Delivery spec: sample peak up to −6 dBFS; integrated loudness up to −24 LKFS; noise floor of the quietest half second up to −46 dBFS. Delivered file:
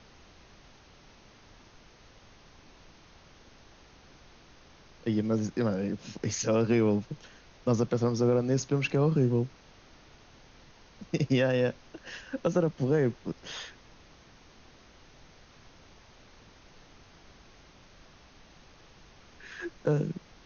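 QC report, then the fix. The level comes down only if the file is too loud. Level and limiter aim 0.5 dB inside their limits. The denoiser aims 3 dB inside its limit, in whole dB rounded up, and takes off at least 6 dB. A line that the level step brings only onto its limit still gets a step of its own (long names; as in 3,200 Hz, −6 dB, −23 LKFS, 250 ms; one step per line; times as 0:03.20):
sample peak −14.5 dBFS: in spec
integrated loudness −29.0 LKFS: in spec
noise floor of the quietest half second −56 dBFS: in spec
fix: no processing needed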